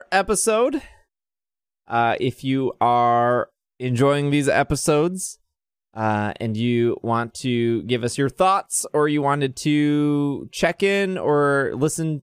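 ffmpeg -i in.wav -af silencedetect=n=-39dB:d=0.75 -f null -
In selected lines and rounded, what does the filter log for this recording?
silence_start: 0.91
silence_end: 1.90 | silence_duration: 0.98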